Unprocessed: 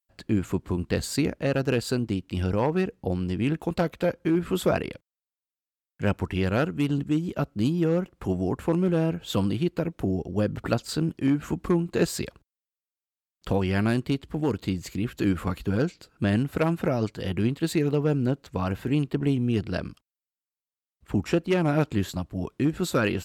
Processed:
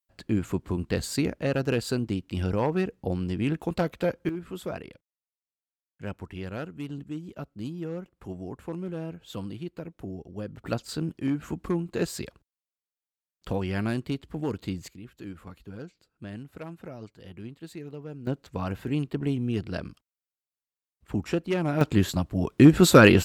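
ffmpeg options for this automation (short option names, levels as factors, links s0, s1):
-af "asetnsamples=n=441:p=0,asendcmd='4.29 volume volume -11dB;10.67 volume volume -4.5dB;14.88 volume volume -16dB;18.27 volume volume -3.5dB;21.81 volume volume 4dB;22.58 volume volume 10dB',volume=0.841"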